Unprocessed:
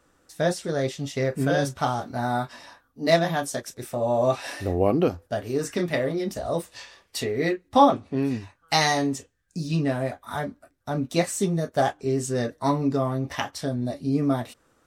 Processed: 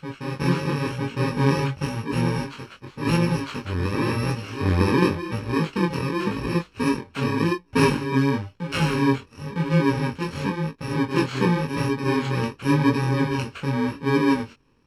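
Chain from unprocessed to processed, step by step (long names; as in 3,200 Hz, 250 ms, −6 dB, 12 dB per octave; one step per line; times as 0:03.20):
samples in bit-reversed order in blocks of 64 samples
low-pass filter 2,600 Hz 12 dB per octave
on a send: backwards echo 958 ms −5.5 dB
on the sum: chorus effect 0.92 Hz, delay 17 ms, depth 5.6 ms
level +9 dB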